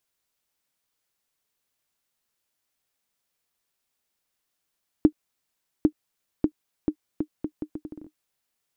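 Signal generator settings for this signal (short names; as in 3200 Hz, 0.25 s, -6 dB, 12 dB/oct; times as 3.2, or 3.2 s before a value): bouncing ball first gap 0.80 s, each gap 0.74, 305 Hz, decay 75 ms -5 dBFS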